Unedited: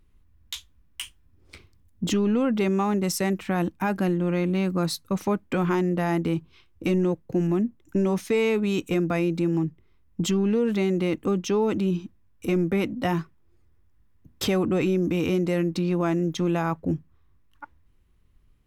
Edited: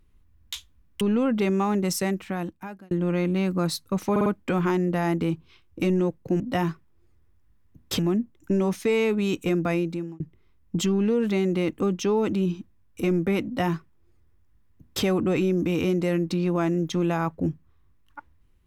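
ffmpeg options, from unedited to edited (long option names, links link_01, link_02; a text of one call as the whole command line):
ffmpeg -i in.wav -filter_complex "[0:a]asplit=9[link_01][link_02][link_03][link_04][link_05][link_06][link_07][link_08][link_09];[link_01]atrim=end=1.012[link_10];[link_02]atrim=start=2.198:end=4.1,asetpts=PTS-STARTPTS,afade=type=out:start_time=0.962:duration=0.94[link_11];[link_03]atrim=start=4.1:end=5.352,asetpts=PTS-STARTPTS,afade=type=in:duration=0.004:curve=hsin[link_12];[link_04]atrim=start=5.298:end=5.352[link_13];[link_05]atrim=start=5.298:end=5.352[link_14];[link_06]atrim=start=5.298:end=7.442[link_15];[link_07]atrim=start=12.898:end=14.492[link_16];[link_08]atrim=start=7.438:end=9.65,asetpts=PTS-STARTPTS,afade=type=out:start_time=1.762:duration=0.45[link_17];[link_09]atrim=start=9.65,asetpts=PTS-STARTPTS,afade=type=in:duration=0.004:curve=hsin[link_18];[link_11][link_12]concat=n=2:v=0:a=1[link_19];[link_10][link_19]acrossfade=duration=0.004:curve1=hsin:curve2=hsin[link_20];[link_20][link_13]acrossfade=duration=0.004:curve1=hsin:curve2=hsin[link_21];[link_21][link_14]acrossfade=duration=0.004:curve1=hsin:curve2=hsin[link_22];[link_22][link_15]acrossfade=duration=0.004:curve1=hsin:curve2=hsin[link_23];[link_23][link_16]acrossfade=duration=0.004:curve1=hsin:curve2=hsin[link_24];[link_17][link_18]concat=n=2:v=0:a=1[link_25];[link_24][link_25]acrossfade=duration=0.004:curve1=hsin:curve2=hsin" out.wav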